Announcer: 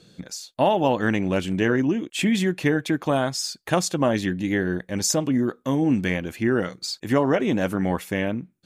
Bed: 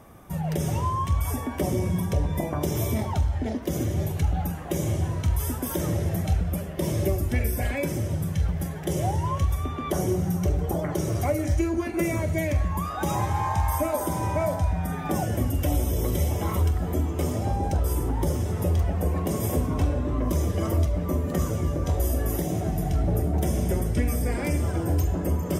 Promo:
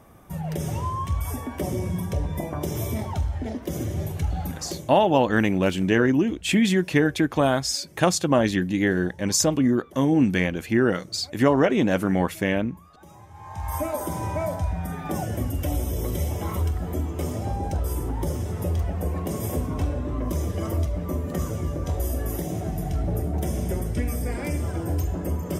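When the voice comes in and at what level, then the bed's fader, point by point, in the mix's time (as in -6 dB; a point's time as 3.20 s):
4.30 s, +1.5 dB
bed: 4.67 s -2 dB
4.98 s -22 dB
13.29 s -22 dB
13.76 s -2 dB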